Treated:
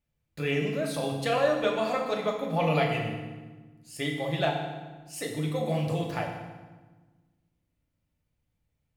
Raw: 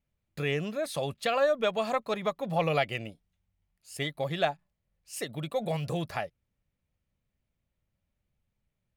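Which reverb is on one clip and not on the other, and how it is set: FDN reverb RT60 1.3 s, low-frequency decay 1.55×, high-frequency decay 0.8×, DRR -1 dB; trim -2 dB

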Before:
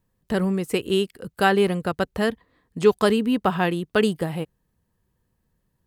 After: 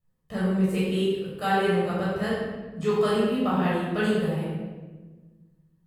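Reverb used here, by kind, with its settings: simulated room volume 1000 m³, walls mixed, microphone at 6.2 m; trim -15.5 dB

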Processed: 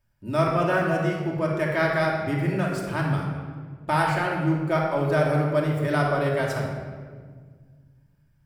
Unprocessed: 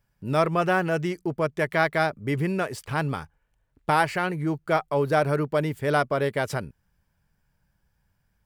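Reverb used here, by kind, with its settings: simulated room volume 2000 m³, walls mixed, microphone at 2.7 m; trim -4.5 dB

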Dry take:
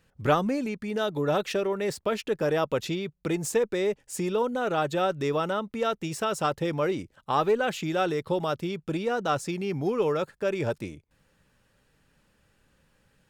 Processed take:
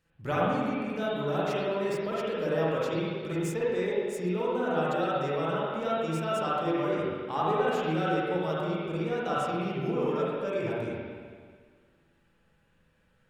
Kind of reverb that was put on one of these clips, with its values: spring tank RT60 1.8 s, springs 44/50/56 ms, chirp 75 ms, DRR -7.5 dB; trim -10 dB

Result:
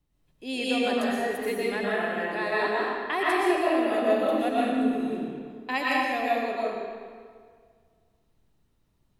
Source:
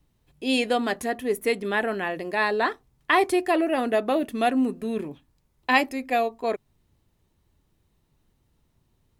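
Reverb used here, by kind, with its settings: algorithmic reverb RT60 1.9 s, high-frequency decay 0.8×, pre-delay 80 ms, DRR -7 dB; trim -9.5 dB

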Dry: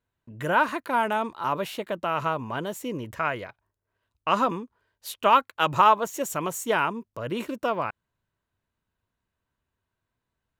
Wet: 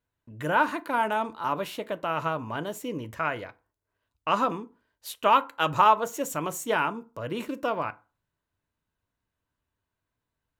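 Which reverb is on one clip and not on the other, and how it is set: FDN reverb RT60 0.33 s, low-frequency decay 1.05×, high-frequency decay 0.6×, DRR 11.5 dB; trim -2 dB

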